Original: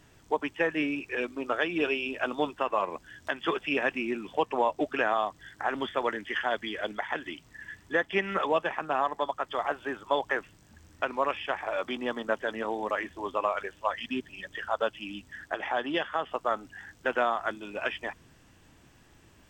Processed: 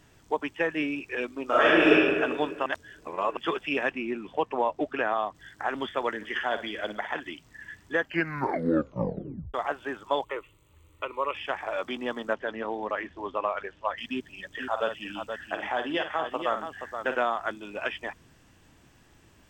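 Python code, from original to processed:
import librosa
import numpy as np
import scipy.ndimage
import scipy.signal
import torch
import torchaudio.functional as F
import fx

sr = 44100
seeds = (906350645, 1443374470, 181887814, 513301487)

y = fx.reverb_throw(x, sr, start_s=1.45, length_s=0.46, rt60_s=1.7, drr_db=-9.5)
y = fx.high_shelf(y, sr, hz=4600.0, db=-11.5, at=(3.9, 5.35))
y = fx.room_flutter(y, sr, wall_m=9.7, rt60_s=0.32, at=(6.2, 7.19), fade=0.02)
y = fx.fixed_phaser(y, sr, hz=1100.0, stages=8, at=(10.24, 11.35))
y = fx.air_absorb(y, sr, metres=140.0, at=(12.33, 13.98))
y = fx.echo_multitap(y, sr, ms=(52, 475), db=(-8.5, -7.5), at=(14.59, 17.14), fade=0.02)
y = fx.edit(y, sr, fx.reverse_span(start_s=2.66, length_s=0.71),
    fx.tape_stop(start_s=7.96, length_s=1.58), tone=tone)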